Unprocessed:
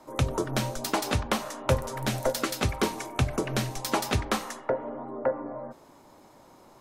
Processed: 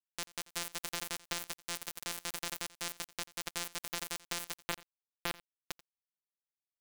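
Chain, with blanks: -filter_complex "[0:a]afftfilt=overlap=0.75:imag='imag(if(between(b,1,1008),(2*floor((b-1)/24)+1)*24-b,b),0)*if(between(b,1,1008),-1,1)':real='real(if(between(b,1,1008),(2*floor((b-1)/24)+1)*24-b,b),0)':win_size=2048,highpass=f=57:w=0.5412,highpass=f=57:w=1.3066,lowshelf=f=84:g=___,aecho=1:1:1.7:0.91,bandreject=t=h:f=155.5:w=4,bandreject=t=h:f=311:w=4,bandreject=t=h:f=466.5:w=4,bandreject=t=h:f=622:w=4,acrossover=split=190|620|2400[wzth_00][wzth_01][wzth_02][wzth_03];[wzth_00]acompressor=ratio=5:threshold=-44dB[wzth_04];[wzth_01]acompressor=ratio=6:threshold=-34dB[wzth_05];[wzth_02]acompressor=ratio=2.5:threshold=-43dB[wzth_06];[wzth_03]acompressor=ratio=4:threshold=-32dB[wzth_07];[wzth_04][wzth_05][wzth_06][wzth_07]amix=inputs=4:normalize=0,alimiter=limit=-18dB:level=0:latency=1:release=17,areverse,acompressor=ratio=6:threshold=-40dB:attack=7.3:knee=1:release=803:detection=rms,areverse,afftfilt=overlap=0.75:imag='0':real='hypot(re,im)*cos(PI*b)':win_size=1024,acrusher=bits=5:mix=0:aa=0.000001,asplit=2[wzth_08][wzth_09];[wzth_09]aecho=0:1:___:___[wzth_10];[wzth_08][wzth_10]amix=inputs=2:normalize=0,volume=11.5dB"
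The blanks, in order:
-7.5, 87, 0.0891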